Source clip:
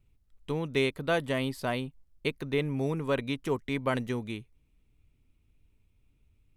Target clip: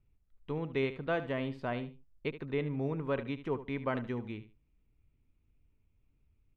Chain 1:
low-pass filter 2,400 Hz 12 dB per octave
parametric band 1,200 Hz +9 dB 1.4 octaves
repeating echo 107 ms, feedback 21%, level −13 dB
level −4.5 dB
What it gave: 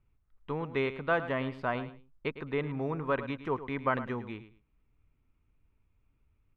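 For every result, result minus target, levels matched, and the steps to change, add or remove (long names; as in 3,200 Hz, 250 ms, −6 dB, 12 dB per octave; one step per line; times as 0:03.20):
echo 33 ms late; 1,000 Hz band +4.5 dB
change: repeating echo 74 ms, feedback 21%, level −13 dB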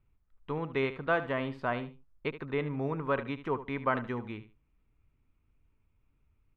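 1,000 Hz band +4.5 dB
remove: parametric band 1,200 Hz +9 dB 1.4 octaves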